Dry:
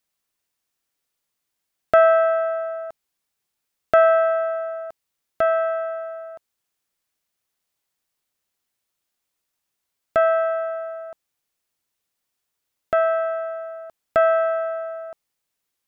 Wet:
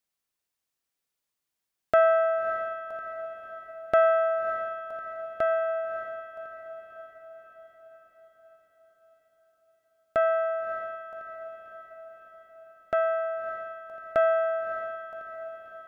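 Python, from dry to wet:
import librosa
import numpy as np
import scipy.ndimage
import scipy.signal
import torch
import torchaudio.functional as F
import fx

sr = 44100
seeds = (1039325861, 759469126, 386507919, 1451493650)

y = fx.echo_diffused(x, sr, ms=606, feedback_pct=57, wet_db=-10)
y = y * librosa.db_to_amplitude(-6.0)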